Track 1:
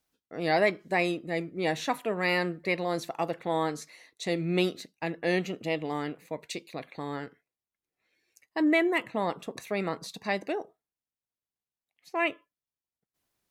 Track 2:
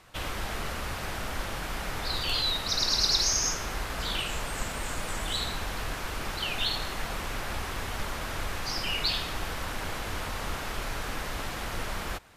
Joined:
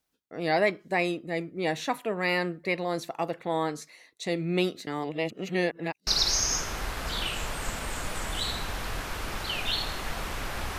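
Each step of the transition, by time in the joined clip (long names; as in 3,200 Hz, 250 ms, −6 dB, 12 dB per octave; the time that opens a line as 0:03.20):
track 1
0:04.87–0:06.07: reverse
0:06.07: continue with track 2 from 0:03.00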